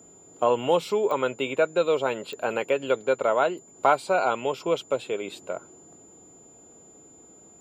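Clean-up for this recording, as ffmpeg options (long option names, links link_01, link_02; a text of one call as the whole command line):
ffmpeg -i in.wav -af "adeclick=threshold=4,bandreject=frequency=7100:width=30" out.wav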